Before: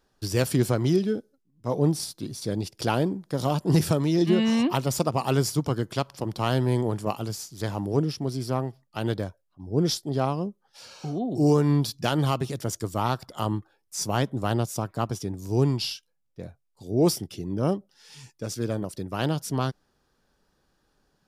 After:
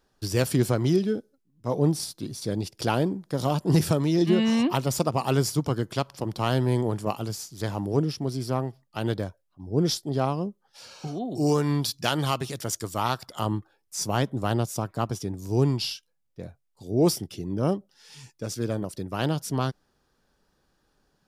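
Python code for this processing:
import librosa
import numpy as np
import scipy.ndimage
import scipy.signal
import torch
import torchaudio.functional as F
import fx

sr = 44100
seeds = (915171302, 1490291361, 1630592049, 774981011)

y = fx.tilt_shelf(x, sr, db=-4.0, hz=850.0, at=(11.07, 13.39))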